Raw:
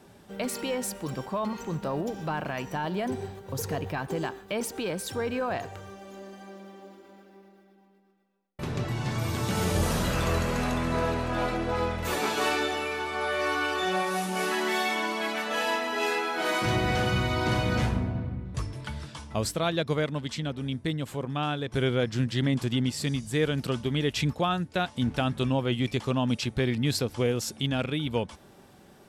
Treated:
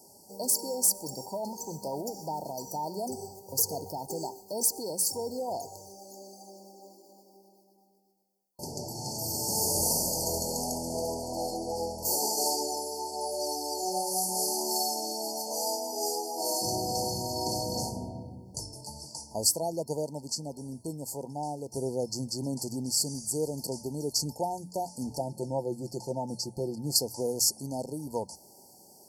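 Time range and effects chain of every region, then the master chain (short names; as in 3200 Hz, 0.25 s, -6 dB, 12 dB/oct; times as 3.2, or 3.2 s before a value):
25.18–26.96 high shelf 2600 Hz -8 dB + comb 5.8 ms, depth 48%
whole clip: notches 60/120/180 Hz; FFT band-reject 970–4300 Hz; tilt +3.5 dB/oct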